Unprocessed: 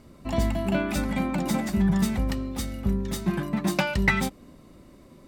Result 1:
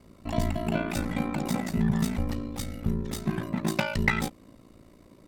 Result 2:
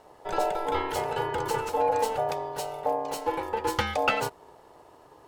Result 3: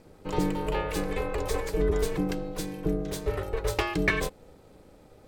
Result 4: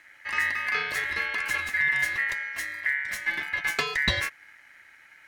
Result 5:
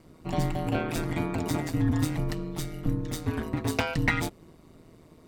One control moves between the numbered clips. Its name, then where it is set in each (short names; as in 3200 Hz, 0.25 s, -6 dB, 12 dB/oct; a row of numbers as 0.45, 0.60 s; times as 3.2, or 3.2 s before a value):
ring modulator, frequency: 28, 670, 240, 1900, 81 Hz